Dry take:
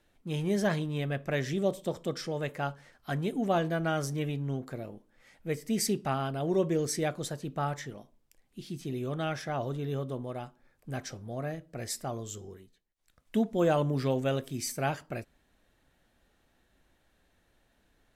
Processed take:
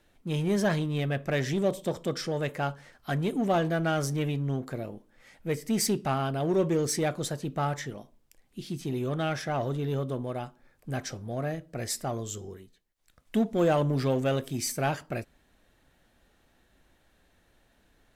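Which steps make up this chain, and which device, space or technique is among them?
parallel distortion (in parallel at −4.5 dB: hard clipping −31 dBFS, distortion −7 dB)

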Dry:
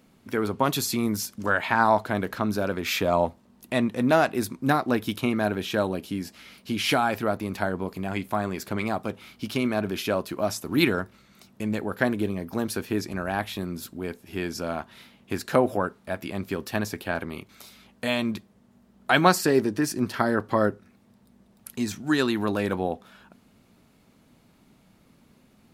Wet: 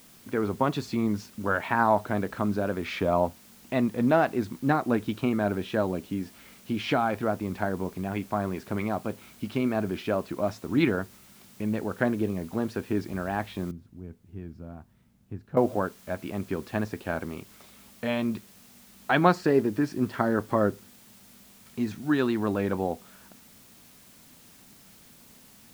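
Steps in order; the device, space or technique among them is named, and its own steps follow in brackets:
cassette deck with a dirty head (head-to-tape spacing loss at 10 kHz 26 dB; tape wow and flutter; white noise bed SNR 26 dB)
0:13.71–0:15.57: drawn EQ curve 110 Hz 0 dB, 400 Hz −14 dB, 4,500 Hz −23 dB

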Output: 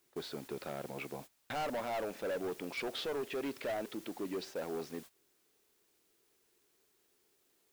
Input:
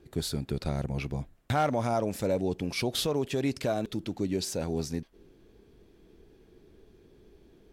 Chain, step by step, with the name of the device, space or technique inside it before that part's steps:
aircraft radio (band-pass filter 380–2,600 Hz; hard clipping −32 dBFS, distortion −7 dB; white noise bed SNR 16 dB; noise gate −47 dBFS, range −17 dB)
level −1.5 dB

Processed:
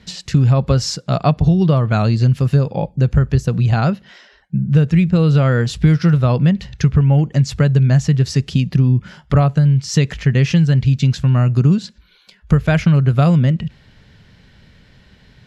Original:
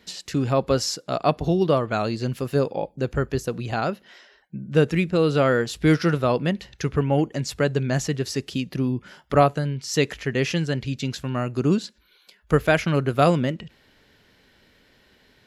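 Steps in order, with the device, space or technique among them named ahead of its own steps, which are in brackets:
jukebox (low-pass filter 8,000 Hz 12 dB per octave; low shelf with overshoot 220 Hz +10.5 dB, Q 1.5; downward compressor 5 to 1, threshold −15 dBFS, peak gain reduction 9.5 dB)
level +5.5 dB

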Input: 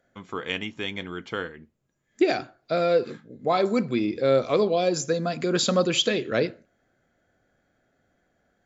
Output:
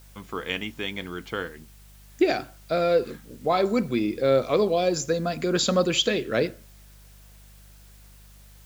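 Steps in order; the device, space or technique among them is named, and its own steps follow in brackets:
video cassette with head-switching buzz (hum with harmonics 50 Hz, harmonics 4, −51 dBFS −8 dB per octave; white noise bed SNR 30 dB)

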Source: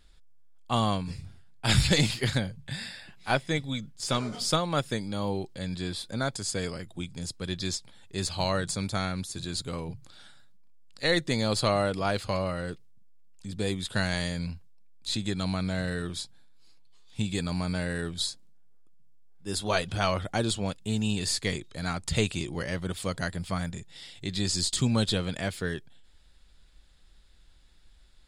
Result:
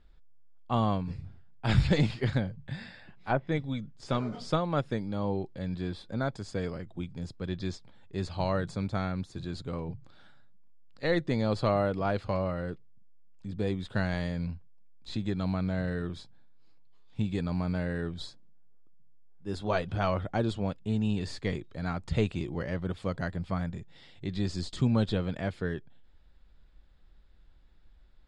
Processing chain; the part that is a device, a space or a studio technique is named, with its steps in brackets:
0:02.75–0:03.52: treble cut that deepens with the level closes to 1,500 Hz, closed at −22 dBFS
through cloth (low-pass filter 6,600 Hz 12 dB per octave; high-shelf EQ 2,700 Hz −17 dB)

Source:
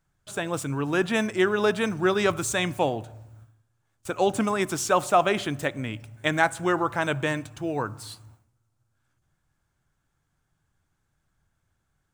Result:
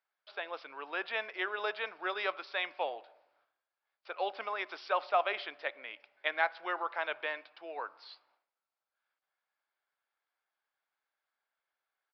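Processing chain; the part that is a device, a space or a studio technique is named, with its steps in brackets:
musical greeting card (downsampling to 11,025 Hz; high-pass filter 520 Hz 24 dB per octave; parametric band 2,200 Hz +4 dB 0.44 octaves)
level −8.5 dB

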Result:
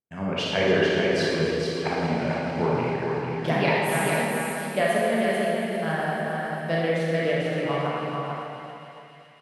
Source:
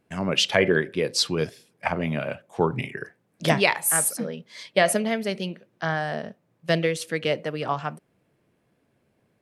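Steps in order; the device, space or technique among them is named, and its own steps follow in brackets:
noise gate −51 dBFS, range −24 dB
high-shelf EQ 4,000 Hz −7.5 dB
delay with a high-pass on its return 279 ms, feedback 75%, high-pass 2,400 Hz, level −11 dB
swimming-pool hall (convolution reverb RT60 2.6 s, pre-delay 27 ms, DRR −5.5 dB; high-shelf EQ 3,900 Hz −6.5 dB)
single-tap delay 443 ms −4.5 dB
level −5.5 dB

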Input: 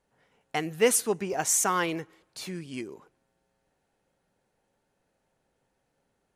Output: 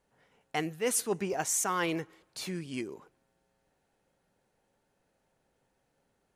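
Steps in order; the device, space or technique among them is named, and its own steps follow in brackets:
compression on the reversed sound (reversed playback; downward compressor 12 to 1, threshold −26 dBFS, peak gain reduction 10.5 dB; reversed playback)

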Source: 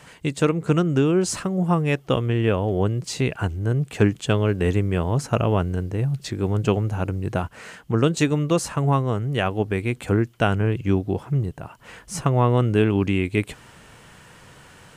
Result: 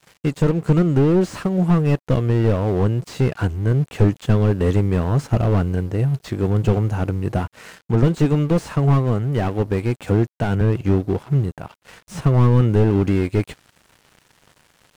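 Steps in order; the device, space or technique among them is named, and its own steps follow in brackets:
0:10.02–0:10.61: high-pass filter 59 Hz 24 dB per octave
early transistor amplifier (dead-zone distortion −44 dBFS; slew-rate limiting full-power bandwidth 44 Hz)
level +4.5 dB

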